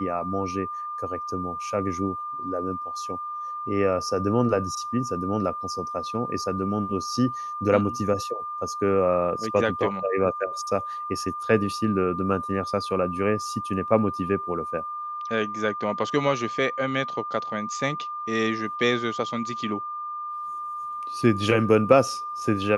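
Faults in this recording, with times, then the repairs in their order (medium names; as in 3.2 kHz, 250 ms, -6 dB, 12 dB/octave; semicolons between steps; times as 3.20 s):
whine 1.2 kHz -30 dBFS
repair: band-stop 1.2 kHz, Q 30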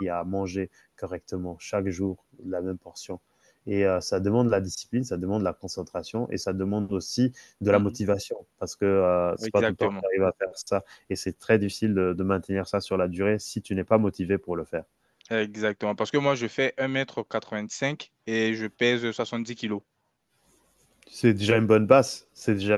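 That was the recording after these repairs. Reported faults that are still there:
nothing left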